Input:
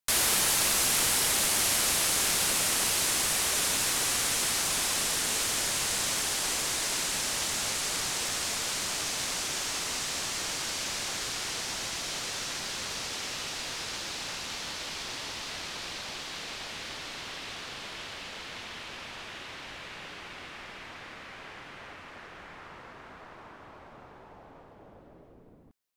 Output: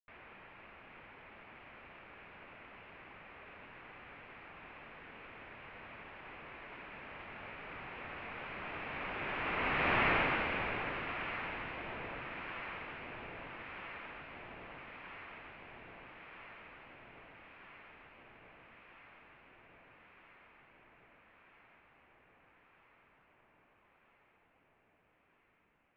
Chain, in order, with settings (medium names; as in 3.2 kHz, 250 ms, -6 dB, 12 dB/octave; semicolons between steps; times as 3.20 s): Doppler pass-by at 10.02 s, 10 m/s, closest 1.6 m; in parallel at -10.5 dB: sine folder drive 11 dB, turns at -21.5 dBFS; on the sum: elliptic low-pass 2.5 kHz, stop band 70 dB; echo whose repeats swap between lows and highs 641 ms, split 820 Hz, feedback 84%, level -10 dB; trim +5.5 dB